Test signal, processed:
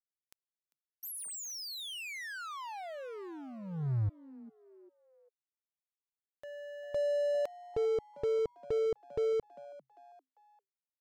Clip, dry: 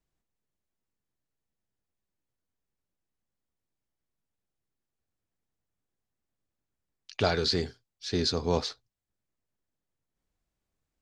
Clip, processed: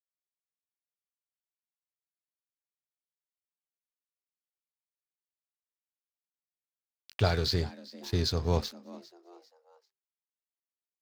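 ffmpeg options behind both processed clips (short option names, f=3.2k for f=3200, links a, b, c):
-filter_complex "[0:a]lowshelf=f=160:t=q:w=1.5:g=7.5,aeval=exprs='sgn(val(0))*max(abs(val(0))-0.00794,0)':c=same,asplit=4[a][b][c][d];[b]adelay=397,afreqshift=130,volume=-19.5dB[e];[c]adelay=794,afreqshift=260,volume=-27.5dB[f];[d]adelay=1191,afreqshift=390,volume=-35.4dB[g];[a][e][f][g]amix=inputs=4:normalize=0,volume=-2dB"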